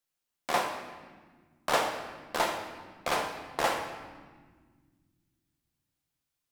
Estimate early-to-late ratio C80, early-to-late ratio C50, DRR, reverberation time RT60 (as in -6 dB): 8.0 dB, 6.0 dB, 3.0 dB, 1.6 s